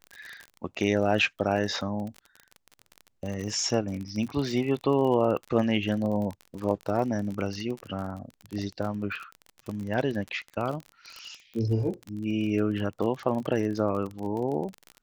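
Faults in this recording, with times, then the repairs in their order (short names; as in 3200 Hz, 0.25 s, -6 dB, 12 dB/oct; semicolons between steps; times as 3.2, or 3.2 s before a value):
crackle 35/s -32 dBFS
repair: de-click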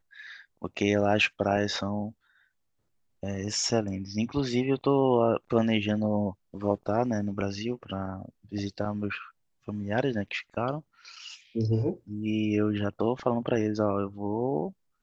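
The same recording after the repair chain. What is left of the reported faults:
none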